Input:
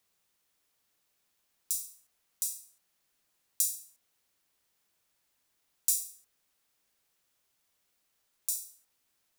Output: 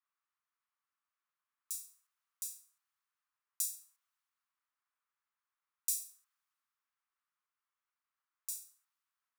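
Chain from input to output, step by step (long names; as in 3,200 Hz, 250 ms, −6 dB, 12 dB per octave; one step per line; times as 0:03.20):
four-pole ladder high-pass 1,000 Hz, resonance 55%
multiband upward and downward expander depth 40%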